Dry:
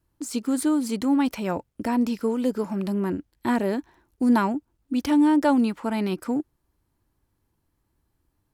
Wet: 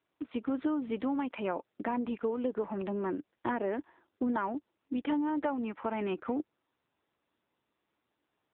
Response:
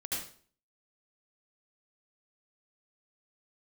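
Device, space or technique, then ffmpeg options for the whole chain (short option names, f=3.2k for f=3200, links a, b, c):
voicemail: -af "highpass=340,lowpass=2.9k,acompressor=threshold=-27dB:ratio=8" -ar 8000 -c:a libopencore_amrnb -b:a 6700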